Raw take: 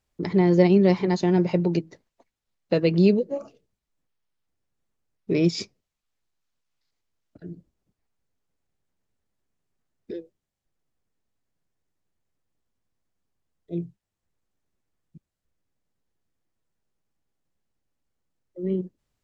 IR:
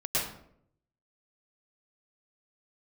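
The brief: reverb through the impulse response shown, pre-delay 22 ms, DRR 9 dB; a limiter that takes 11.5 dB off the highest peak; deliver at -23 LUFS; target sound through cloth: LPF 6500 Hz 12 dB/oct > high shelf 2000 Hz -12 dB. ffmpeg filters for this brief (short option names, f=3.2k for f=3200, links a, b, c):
-filter_complex "[0:a]alimiter=limit=-17dB:level=0:latency=1,asplit=2[a][b];[1:a]atrim=start_sample=2205,adelay=22[c];[b][c]afir=irnorm=-1:irlink=0,volume=-17.5dB[d];[a][d]amix=inputs=2:normalize=0,lowpass=6.5k,highshelf=f=2k:g=-12,volume=5dB"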